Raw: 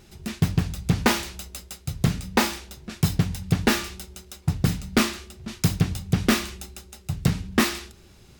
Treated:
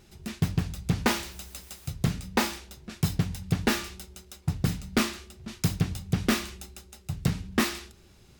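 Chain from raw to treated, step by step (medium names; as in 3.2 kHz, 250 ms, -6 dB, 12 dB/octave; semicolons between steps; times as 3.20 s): 1.06–1.90 s: word length cut 8-bit, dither triangular; trim -4.5 dB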